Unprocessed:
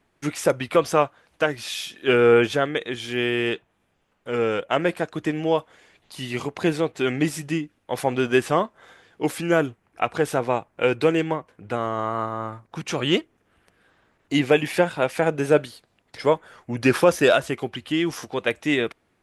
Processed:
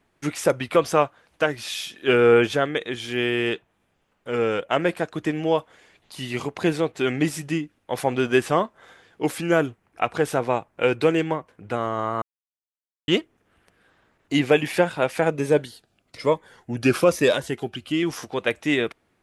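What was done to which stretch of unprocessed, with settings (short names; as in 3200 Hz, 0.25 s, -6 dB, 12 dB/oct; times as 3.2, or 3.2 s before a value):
12.22–13.08 mute
15.31–18.03 cascading phaser falling 1.1 Hz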